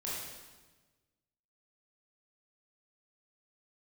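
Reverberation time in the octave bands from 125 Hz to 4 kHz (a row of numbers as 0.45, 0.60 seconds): 1.7, 1.5, 1.3, 1.2, 1.2, 1.1 seconds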